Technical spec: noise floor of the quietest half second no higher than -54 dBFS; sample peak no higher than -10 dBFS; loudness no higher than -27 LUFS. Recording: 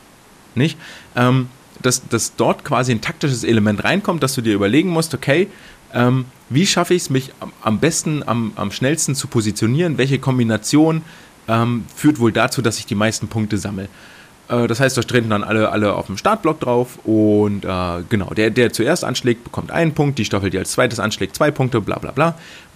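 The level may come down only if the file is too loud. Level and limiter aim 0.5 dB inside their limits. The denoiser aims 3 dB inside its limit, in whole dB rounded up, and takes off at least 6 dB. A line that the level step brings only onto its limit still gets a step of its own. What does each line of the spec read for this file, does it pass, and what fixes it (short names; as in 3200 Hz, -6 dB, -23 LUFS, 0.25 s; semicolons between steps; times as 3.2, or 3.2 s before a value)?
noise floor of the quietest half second -46 dBFS: fail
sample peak -3.0 dBFS: fail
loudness -18.0 LUFS: fail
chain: gain -9.5 dB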